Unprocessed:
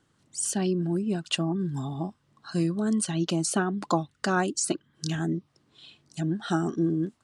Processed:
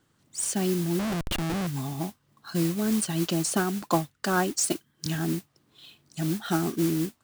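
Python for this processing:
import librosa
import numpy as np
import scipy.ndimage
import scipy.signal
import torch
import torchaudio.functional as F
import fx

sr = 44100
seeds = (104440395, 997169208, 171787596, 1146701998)

y = fx.mod_noise(x, sr, seeds[0], snr_db=13)
y = fx.schmitt(y, sr, flips_db=-30.5, at=(0.99, 1.67))
y = fx.band_widen(y, sr, depth_pct=40, at=(3.82, 5.06))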